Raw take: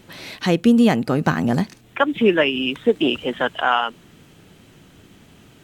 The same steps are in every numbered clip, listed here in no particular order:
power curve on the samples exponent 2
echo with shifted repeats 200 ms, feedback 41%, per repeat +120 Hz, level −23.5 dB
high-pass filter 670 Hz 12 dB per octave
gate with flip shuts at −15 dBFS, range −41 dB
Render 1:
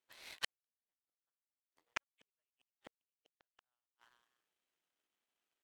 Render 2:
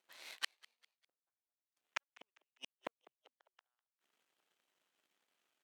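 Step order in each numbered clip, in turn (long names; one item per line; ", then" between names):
echo with shifted repeats, then gate with flip, then high-pass filter, then power curve on the samples
gate with flip, then power curve on the samples, then echo with shifted repeats, then high-pass filter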